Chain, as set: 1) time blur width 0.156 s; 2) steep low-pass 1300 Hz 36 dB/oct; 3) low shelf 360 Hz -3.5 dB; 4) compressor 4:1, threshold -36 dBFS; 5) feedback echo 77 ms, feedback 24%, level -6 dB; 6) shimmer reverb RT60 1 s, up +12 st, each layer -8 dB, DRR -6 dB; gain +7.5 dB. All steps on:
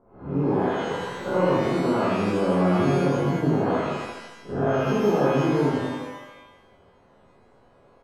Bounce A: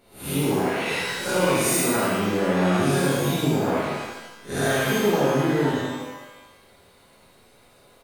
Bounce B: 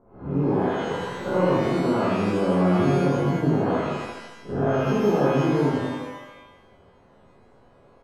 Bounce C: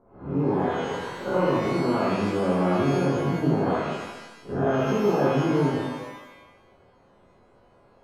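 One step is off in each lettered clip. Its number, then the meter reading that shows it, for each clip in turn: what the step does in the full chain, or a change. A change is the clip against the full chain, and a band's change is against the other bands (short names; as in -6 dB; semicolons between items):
2, 8 kHz band +18.0 dB; 3, 125 Hz band +1.5 dB; 5, loudness change -1.0 LU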